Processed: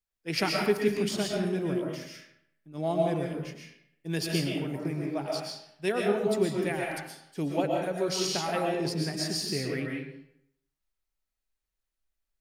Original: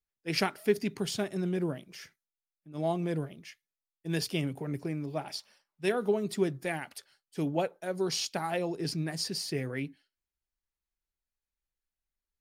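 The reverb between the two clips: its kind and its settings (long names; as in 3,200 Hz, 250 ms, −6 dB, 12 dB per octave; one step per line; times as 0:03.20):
comb and all-pass reverb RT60 0.74 s, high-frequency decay 0.75×, pre-delay 85 ms, DRR −1 dB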